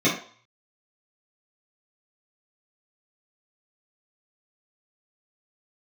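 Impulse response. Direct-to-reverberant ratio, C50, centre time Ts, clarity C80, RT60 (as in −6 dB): −10.5 dB, 6.5 dB, 29 ms, 12.0 dB, 0.50 s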